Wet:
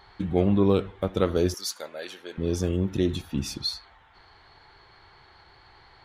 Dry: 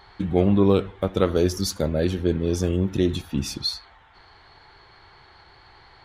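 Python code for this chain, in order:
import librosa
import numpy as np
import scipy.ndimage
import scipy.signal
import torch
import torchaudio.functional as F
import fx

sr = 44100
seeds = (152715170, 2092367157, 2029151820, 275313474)

y = fx.highpass(x, sr, hz=890.0, slope=12, at=(1.54, 2.38))
y = F.gain(torch.from_numpy(y), -3.0).numpy()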